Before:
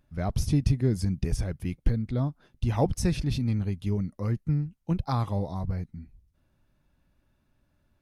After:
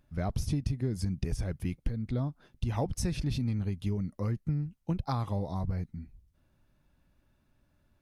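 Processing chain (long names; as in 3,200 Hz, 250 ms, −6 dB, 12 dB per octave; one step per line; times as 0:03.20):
downward compressor 5 to 1, threshold −27 dBFS, peak gain reduction 10.5 dB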